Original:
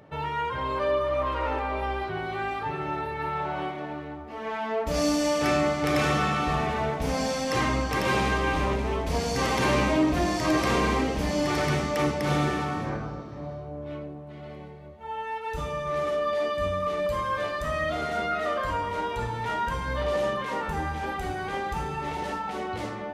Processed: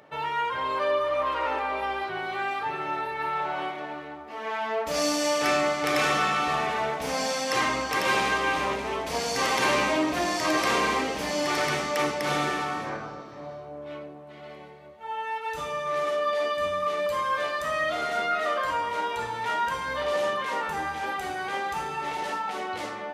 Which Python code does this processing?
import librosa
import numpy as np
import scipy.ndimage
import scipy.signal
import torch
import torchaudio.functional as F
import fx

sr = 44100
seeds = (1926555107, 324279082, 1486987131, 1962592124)

y = fx.highpass(x, sr, hz=690.0, slope=6)
y = y * librosa.db_to_amplitude(3.5)